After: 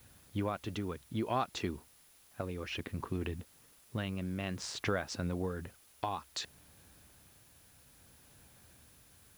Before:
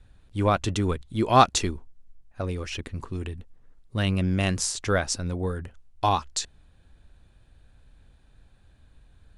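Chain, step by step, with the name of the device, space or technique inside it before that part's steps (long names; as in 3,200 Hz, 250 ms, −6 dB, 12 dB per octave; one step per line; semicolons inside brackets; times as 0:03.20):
medium wave at night (band-pass filter 110–3,500 Hz; downward compressor 5 to 1, threshold −31 dBFS, peak gain reduction 18 dB; amplitude tremolo 0.59 Hz, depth 39%; steady tone 10,000 Hz −68 dBFS; white noise bed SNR 24 dB)
level +1 dB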